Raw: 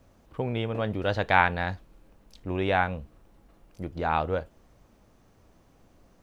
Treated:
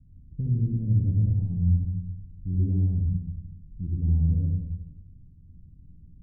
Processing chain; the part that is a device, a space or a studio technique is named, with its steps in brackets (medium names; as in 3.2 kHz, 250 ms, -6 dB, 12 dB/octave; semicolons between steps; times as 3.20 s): club heard from the street (peak limiter -14.5 dBFS, peak gain reduction 10.5 dB; low-pass 180 Hz 24 dB/octave; reverberation RT60 0.95 s, pre-delay 54 ms, DRR -2.5 dB); trim +6.5 dB